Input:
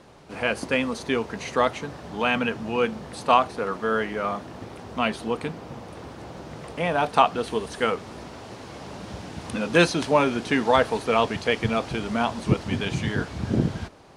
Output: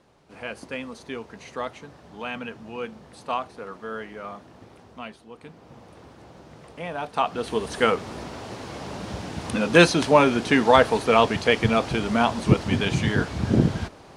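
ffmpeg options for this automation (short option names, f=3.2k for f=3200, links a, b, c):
-af "volume=13dB,afade=t=out:st=4.77:d=0.5:silence=0.334965,afade=t=in:st=5.27:d=0.55:silence=0.281838,afade=t=in:st=7.14:d=0.64:silence=0.266073"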